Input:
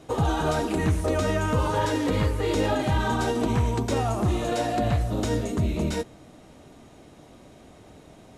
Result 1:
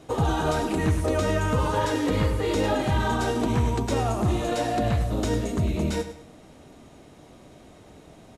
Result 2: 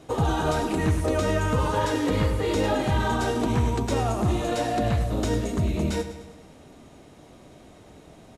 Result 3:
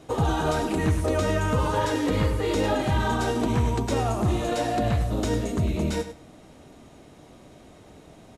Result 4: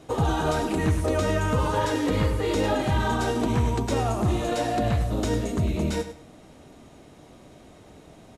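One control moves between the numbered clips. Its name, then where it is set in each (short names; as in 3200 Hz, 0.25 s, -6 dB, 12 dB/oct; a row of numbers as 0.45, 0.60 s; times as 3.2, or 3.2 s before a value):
feedback echo, feedback: 34, 56, 15, 23%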